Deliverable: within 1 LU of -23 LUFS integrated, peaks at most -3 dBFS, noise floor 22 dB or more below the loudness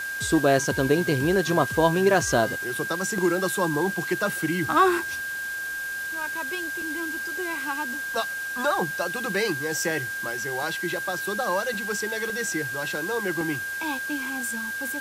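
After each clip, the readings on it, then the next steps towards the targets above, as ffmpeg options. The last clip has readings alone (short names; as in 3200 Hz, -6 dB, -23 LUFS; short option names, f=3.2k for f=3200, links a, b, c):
steady tone 1600 Hz; tone level -29 dBFS; noise floor -32 dBFS; noise floor target -48 dBFS; loudness -25.5 LUFS; peak -7.5 dBFS; loudness target -23.0 LUFS
-> -af "bandreject=f=1.6k:w=30"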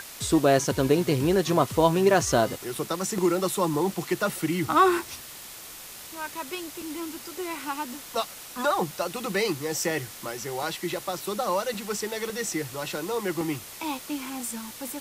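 steady tone none; noise floor -43 dBFS; noise floor target -49 dBFS
-> -af "afftdn=nr=6:nf=-43"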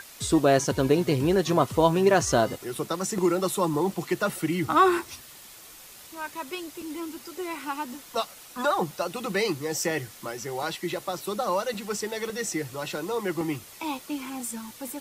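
noise floor -47 dBFS; noise floor target -49 dBFS
-> -af "afftdn=nr=6:nf=-47"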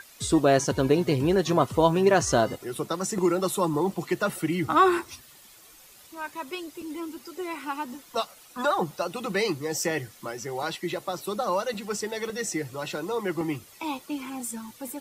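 noise floor -52 dBFS; loudness -27.0 LUFS; peak -7.5 dBFS; loudness target -23.0 LUFS
-> -af "volume=4dB"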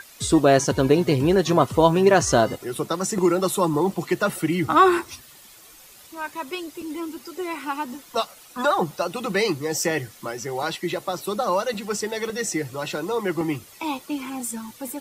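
loudness -23.0 LUFS; peak -3.5 dBFS; noise floor -48 dBFS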